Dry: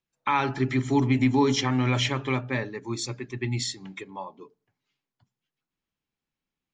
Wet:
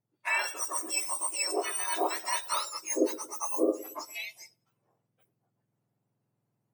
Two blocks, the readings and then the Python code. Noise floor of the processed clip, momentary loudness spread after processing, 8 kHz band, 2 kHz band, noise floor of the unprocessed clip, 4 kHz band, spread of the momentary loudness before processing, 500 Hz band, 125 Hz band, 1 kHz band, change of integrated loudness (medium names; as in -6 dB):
-82 dBFS, 9 LU, +7.0 dB, -2.5 dB, under -85 dBFS, -5.5 dB, 17 LU, -2.5 dB, under -40 dB, -5.0 dB, -4.5 dB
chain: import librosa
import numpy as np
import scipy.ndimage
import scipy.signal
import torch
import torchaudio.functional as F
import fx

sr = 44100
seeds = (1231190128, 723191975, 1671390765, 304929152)

y = fx.octave_mirror(x, sr, pivot_hz=1500.0)
y = fx.echo_wet_lowpass(y, sr, ms=114, feedback_pct=32, hz=610.0, wet_db=-16)
y = fx.rider(y, sr, range_db=5, speed_s=0.5)
y = y * 10.0 ** (-1.5 / 20.0)